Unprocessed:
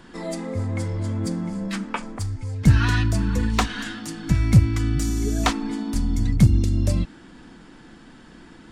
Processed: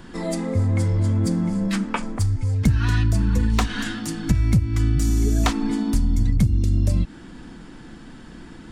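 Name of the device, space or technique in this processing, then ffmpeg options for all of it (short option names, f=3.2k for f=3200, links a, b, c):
ASMR close-microphone chain: -af "lowshelf=f=210:g=7,acompressor=threshold=-17dB:ratio=6,highshelf=f=9.9k:g=5,volume=2dB"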